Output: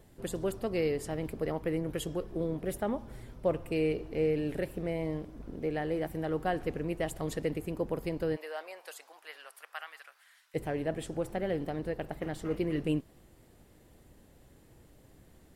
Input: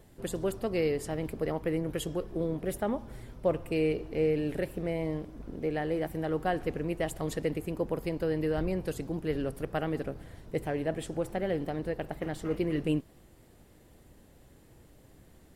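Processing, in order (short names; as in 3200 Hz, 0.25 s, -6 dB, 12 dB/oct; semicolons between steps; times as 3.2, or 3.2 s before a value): 8.35–10.54 HPF 590 Hz -> 1400 Hz 24 dB/oct; gain -1.5 dB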